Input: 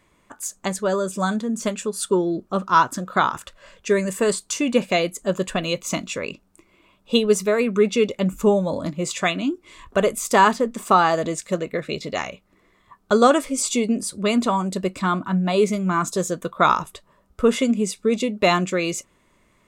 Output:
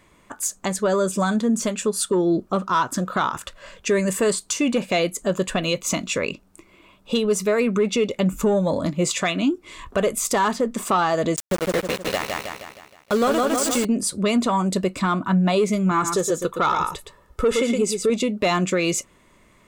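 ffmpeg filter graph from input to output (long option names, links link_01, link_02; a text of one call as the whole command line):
ffmpeg -i in.wav -filter_complex "[0:a]asettb=1/sr,asplit=3[link_01][link_02][link_03];[link_01]atrim=end=11.364[link_04];[link_02]atrim=start=11.36:end=13.85,asetpts=PTS-STARTPTS,afade=type=in:duration=0.004:curve=qsin,afade=type=out:start_time=2.486:duration=0.004:curve=qsin,aeval=exprs='val(0)*gte(abs(val(0)),0.0596)':channel_layout=same,aecho=1:1:157|314|471|628|785|942:0.562|0.27|0.13|0.0622|0.0299|0.0143,atrim=end_sample=109809[link_05];[link_03]atrim=start=13.846[link_06];[link_04][link_05]acrossfade=duration=0.004:curve1=hsin:curve2=qsin[link_07];[link_07][link_06]acrossfade=duration=0.004:curve1=qsin:curve2=hsin,asettb=1/sr,asplit=3[link_08][link_09][link_10];[link_08]atrim=end=15.914[link_11];[link_09]atrim=start=15.91:end=18.1,asetpts=PTS-STARTPTS,afade=type=in:duration=0.004:curve=qsin,afade=type=out:start_time=2.186:duration=0.004:curve=qsin,aecho=1:1:2.3:0.47,atrim=end_sample=96579,aecho=1:1:116:0.398,atrim=end_sample=96579[link_12];[link_10]atrim=start=18.096[link_13];[link_11][link_12]acrossfade=duration=0.004:curve1=hsin:curve2=qsin[link_14];[link_14][link_13]acrossfade=duration=0.004:curve1=qsin:curve2=hsin,acontrast=73,alimiter=limit=-11dB:level=0:latency=1:release=208,volume=-1.5dB" out.wav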